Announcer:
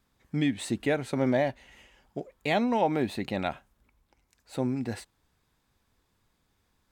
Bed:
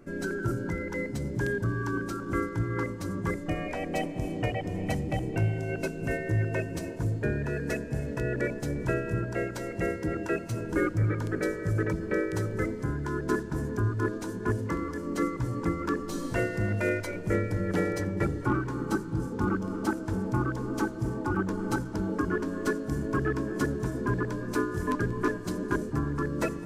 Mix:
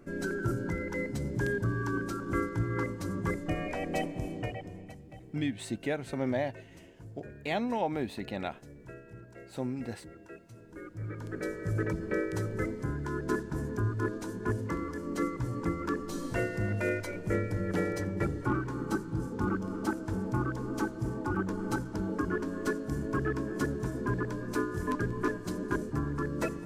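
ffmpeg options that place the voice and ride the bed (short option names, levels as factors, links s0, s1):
-filter_complex "[0:a]adelay=5000,volume=0.531[s0];[1:a]volume=5.31,afade=t=out:st=3.98:d=0.95:silence=0.133352,afade=t=in:st=10.84:d=0.96:silence=0.158489[s1];[s0][s1]amix=inputs=2:normalize=0"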